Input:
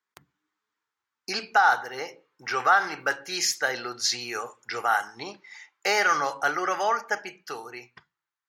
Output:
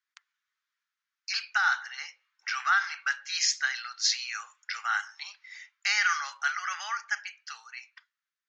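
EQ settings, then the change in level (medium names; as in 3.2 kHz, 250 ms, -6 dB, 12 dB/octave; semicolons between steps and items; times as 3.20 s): high-pass 1.4 kHz 24 dB/octave; steep low-pass 7 kHz 48 dB/octave; 0.0 dB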